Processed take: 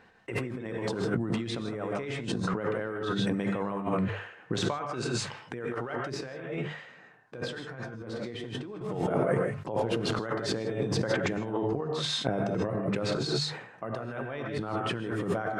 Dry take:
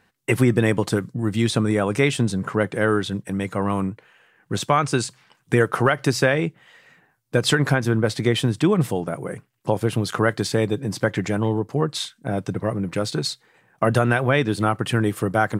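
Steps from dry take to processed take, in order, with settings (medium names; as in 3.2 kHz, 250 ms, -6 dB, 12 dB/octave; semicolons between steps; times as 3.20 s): hum notches 50/100/150 Hz; gated-style reverb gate 180 ms rising, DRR 2.5 dB; compressor with a negative ratio -29 dBFS, ratio -1; tone controls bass -6 dB, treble +5 dB; 6.14–8.81 s: flange 1.2 Hz, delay 8.7 ms, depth 5.2 ms, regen -65%; tape spacing loss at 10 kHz 25 dB; decay stretcher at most 79 dB/s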